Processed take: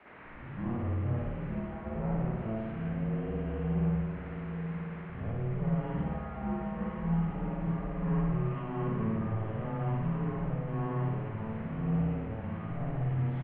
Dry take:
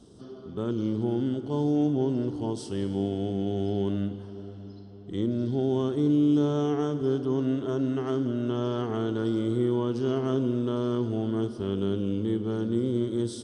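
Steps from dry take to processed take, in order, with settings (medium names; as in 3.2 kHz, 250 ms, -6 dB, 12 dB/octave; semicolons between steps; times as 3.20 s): tape start-up on the opening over 0.49 s; rotary cabinet horn 0.8 Hz, later 5.5 Hz, at 11.81 s; saturation -25 dBFS, distortion -12 dB; feedback delay 988 ms, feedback 45%, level -13.5 dB; word length cut 8-bit, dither triangular; peak limiter -28 dBFS, peak gain reduction 5.5 dB; mistuned SSB -230 Hz 350–2400 Hz; spring tank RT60 1.1 s, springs 54 ms, chirp 20 ms, DRR -7 dB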